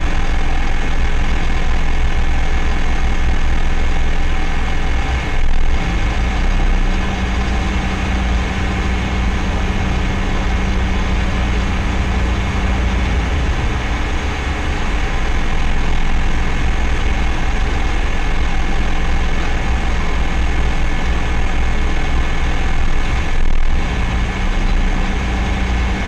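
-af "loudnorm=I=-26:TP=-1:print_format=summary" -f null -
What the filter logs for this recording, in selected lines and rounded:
Input Integrated:    -19.7 LUFS
Input True Peak:      -7.6 dBTP
Input LRA:             1.5 LU
Input Threshold:     -29.7 LUFS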